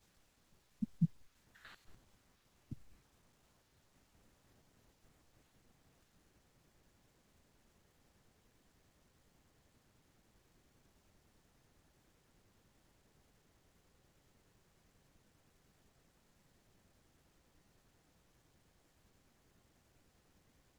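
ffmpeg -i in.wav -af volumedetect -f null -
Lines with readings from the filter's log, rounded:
mean_volume: -53.8 dB
max_volume: -22.2 dB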